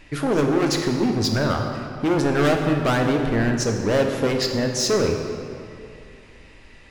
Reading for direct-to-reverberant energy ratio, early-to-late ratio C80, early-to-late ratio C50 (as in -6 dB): 2.5 dB, 5.5 dB, 4.5 dB